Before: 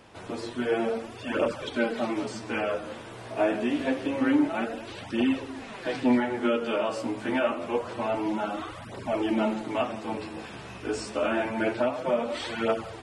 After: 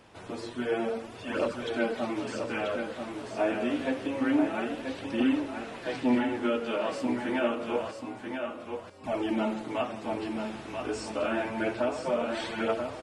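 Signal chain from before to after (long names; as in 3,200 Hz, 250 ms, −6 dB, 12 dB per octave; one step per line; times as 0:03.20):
0:07.91–0:09.04: stiff-string resonator 93 Hz, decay 0.73 s, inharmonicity 0.008
repeating echo 985 ms, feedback 16%, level −6 dB
level −3 dB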